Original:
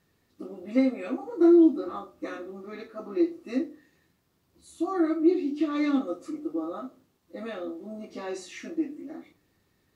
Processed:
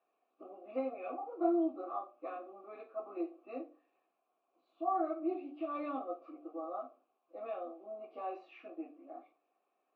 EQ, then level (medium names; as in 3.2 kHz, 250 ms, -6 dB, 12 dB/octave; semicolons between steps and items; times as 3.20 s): vowel filter a; high-pass 260 Hz 24 dB/octave; distance through air 350 m; +6.5 dB